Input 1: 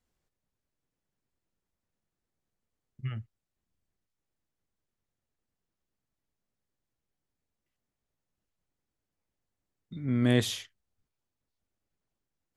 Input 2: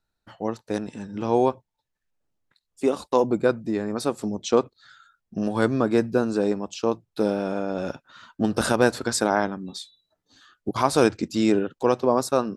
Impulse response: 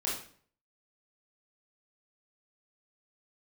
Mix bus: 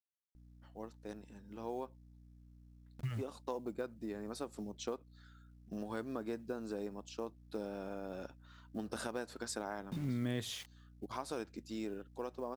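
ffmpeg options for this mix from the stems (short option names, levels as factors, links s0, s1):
-filter_complex "[0:a]aeval=exprs='val(0)*gte(abs(val(0)),0.00473)':c=same,volume=1.26[s0];[1:a]equalizer=f=130:w=2.4:g=-8,dynaudnorm=f=280:g=17:m=2.82,aeval=exprs='val(0)+0.0112*(sin(2*PI*60*n/s)+sin(2*PI*2*60*n/s)/2+sin(2*PI*3*60*n/s)/3+sin(2*PI*4*60*n/s)/4+sin(2*PI*5*60*n/s)/5)':c=same,adelay=350,volume=0.112[s1];[s0][s1]amix=inputs=2:normalize=0,acrusher=bits=8:mode=log:mix=0:aa=0.000001,acompressor=threshold=0.0158:ratio=4"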